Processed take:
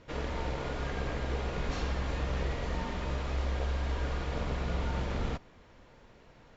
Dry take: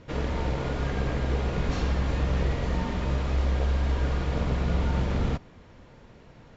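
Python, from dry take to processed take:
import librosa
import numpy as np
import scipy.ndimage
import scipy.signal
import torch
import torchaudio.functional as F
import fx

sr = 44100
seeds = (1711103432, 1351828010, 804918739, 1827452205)

y = fx.peak_eq(x, sr, hz=130.0, db=-6.5, octaves=2.7)
y = y * 10.0 ** (-3.0 / 20.0)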